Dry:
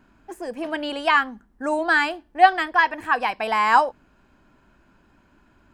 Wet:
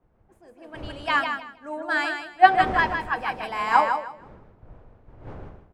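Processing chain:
wind on the microphone 630 Hz −35 dBFS
hum removal 84.49 Hz, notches 12
on a send: repeating echo 158 ms, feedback 39%, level −4 dB
on the sum: multiband upward and downward expander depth 100%
level −7 dB

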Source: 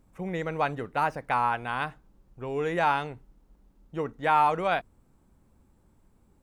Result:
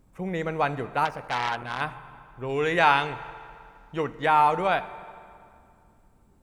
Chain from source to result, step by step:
0:02.49–0:04.26: parametric band 3,100 Hz +8 dB 2.5 octaves
convolution reverb RT60 2.4 s, pre-delay 4 ms, DRR 13 dB
0:01.05–0:01.81: saturating transformer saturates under 2,800 Hz
level +2 dB

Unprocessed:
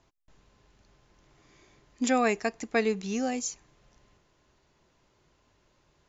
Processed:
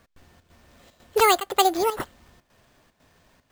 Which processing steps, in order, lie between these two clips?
wrong playback speed 45 rpm record played at 78 rpm
square-wave tremolo 2 Hz, depth 65%, duty 80%
bad sample-rate conversion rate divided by 4×, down none, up hold
level +7.5 dB

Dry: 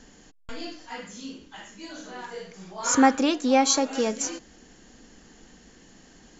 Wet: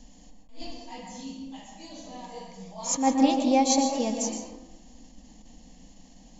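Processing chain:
low-shelf EQ 100 Hz +10.5 dB
phaser with its sweep stopped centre 390 Hz, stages 6
convolution reverb RT60 0.90 s, pre-delay 113 ms, DRR 3.5 dB
level that may rise only so fast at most 140 dB per second
level −1.5 dB

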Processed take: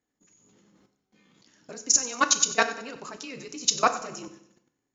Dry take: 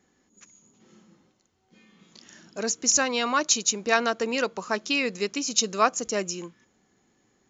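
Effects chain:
output level in coarse steps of 22 dB
time stretch by overlap-add 0.66×, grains 31 ms
on a send: repeating echo 94 ms, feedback 50%, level −17 dB
on the sum: feedback delay network reverb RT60 0.67 s, low-frequency decay 1×, high-frequency decay 0.9×, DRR 8.5 dB
level +5.5 dB

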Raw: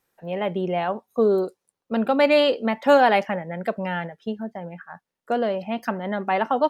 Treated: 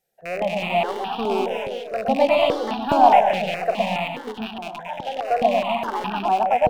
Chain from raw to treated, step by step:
loose part that buzzes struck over −36 dBFS, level −14 dBFS
in parallel at −9.5 dB: wave folding −14 dBFS
on the sum: parametric band 700 Hz +11 dB 0.42 octaves
on a send: delay that swaps between a low-pass and a high-pass 113 ms, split 840 Hz, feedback 51%, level −2.5 dB
on the sum: delay with pitch and tempo change per echo 337 ms, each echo +2 semitones, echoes 3, each echo −6 dB
step-sequenced phaser 4.8 Hz 290–2,100 Hz
level −5 dB

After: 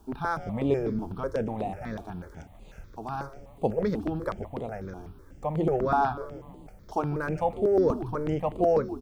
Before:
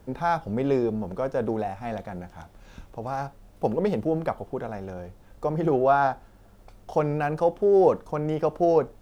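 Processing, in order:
on a send: echo with shifted repeats 149 ms, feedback 58%, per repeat −130 Hz, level −14.5 dB
on the sum: step-sequenced phaser 8.1 Hz 530–5,500 Hz

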